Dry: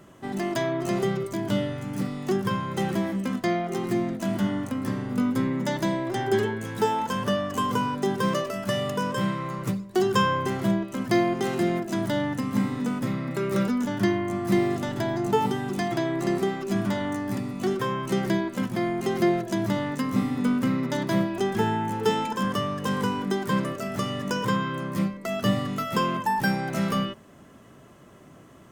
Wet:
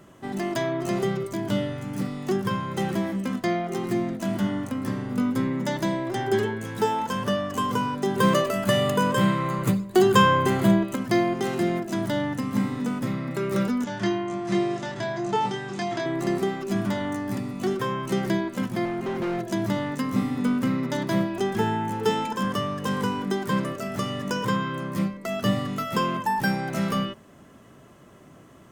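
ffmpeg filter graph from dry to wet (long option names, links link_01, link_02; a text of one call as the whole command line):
ffmpeg -i in.wav -filter_complex "[0:a]asettb=1/sr,asplit=3[link_01][link_02][link_03];[link_01]atrim=end=8.164[link_04];[link_02]atrim=start=8.16:end=10.96,asetpts=PTS-STARTPTS,afade=type=in:duration=0.004:curve=qsin,afade=type=out:start_time=2.796:duration=0.004:curve=qsin,highshelf=frequency=12000:gain=3.5,bandreject=frequency=5500:width=5.6,acontrast=29[link_05];[link_03]atrim=start=10.956[link_06];[link_04][link_05]acrossfade=duration=0.004:curve1=hsin:curve2=qsin[link_07];[link_07][link_06]acrossfade=duration=0.004:curve1=qsin:curve2=hsin,asettb=1/sr,asplit=3[link_08][link_09][link_10];[link_08]atrim=end=13.844[link_11];[link_09]atrim=start=13.84:end=16.06,asetpts=PTS-STARTPTS,afade=type=in:duration=0.004:curve=qsin,afade=type=out:start_time=2.216:duration=0.004:curve=qsin,lowpass=frequency=7500:width=0.5412,lowpass=frequency=7500:width=1.3066,lowshelf=frequency=500:gain=-7.5,asplit=2[link_12][link_13];[link_13]adelay=26,volume=-4dB[link_14];[link_12][link_14]amix=inputs=2:normalize=0,atrim=end_sample=97902[link_15];[link_10]atrim=start=16.056[link_16];[link_11][link_15]acrossfade=duration=0.004:curve1=hsin:curve2=qsin[link_17];[link_17][link_16]acrossfade=duration=0.004:curve1=qsin:curve2=hsin,asettb=1/sr,asplit=3[link_18][link_19][link_20];[link_18]atrim=end=18.854[link_21];[link_19]atrim=start=18.85:end=19.39,asetpts=PTS-STARTPTS,afade=type=in:duration=0.004:curve=qsin,afade=type=out:start_time=0.536:duration=0.004:curve=qsin,acrossover=split=2900[link_22][link_23];[link_23]acompressor=threshold=-53dB:ratio=4:attack=1:release=60[link_24];[link_22][link_24]amix=inputs=2:normalize=0,asoftclip=type=hard:threshold=-25dB[link_25];[link_20]atrim=start=19.386[link_26];[link_21][link_25]acrossfade=duration=0.004:curve1=hsin:curve2=qsin[link_27];[link_27][link_26]acrossfade=duration=0.004:curve1=qsin:curve2=hsin" out.wav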